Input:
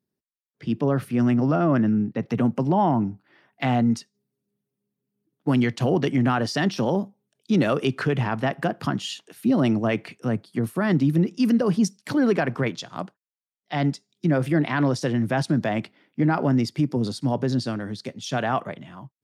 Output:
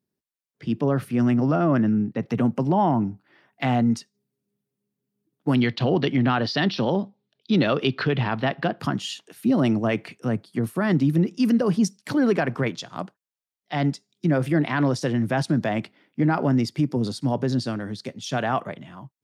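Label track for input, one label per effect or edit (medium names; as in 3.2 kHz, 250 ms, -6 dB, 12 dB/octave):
5.550000	8.800000	resonant high shelf 5.8 kHz -13 dB, Q 3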